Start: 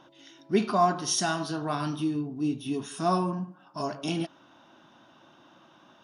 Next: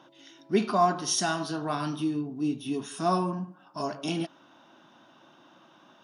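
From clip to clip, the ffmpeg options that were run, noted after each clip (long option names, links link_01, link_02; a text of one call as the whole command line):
ffmpeg -i in.wav -af "highpass=130" out.wav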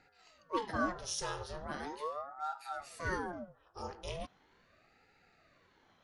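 ffmpeg -i in.wav -af "aeval=exprs='val(0)*sin(2*PI*640*n/s+640*0.7/0.39*sin(2*PI*0.39*n/s))':channel_layout=same,volume=-8dB" out.wav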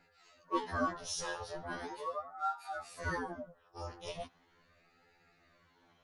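ffmpeg -i in.wav -af "afftfilt=real='re*2*eq(mod(b,4),0)':imag='im*2*eq(mod(b,4),0)':win_size=2048:overlap=0.75,volume=2dB" out.wav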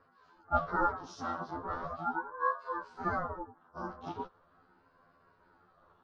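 ffmpeg -i in.wav -af "lowpass=frequency=5000:width=0.5412,lowpass=frequency=5000:width=1.3066,aeval=exprs='val(0)*sin(2*PI*270*n/s)':channel_layout=same,highshelf=frequency=1700:width_type=q:width=3:gain=-8.5,volume=4.5dB" out.wav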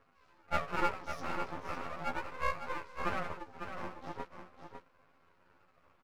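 ffmpeg -i in.wav -af "aeval=exprs='max(val(0),0)':channel_layout=same,aecho=1:1:552:0.398,volume=1dB" out.wav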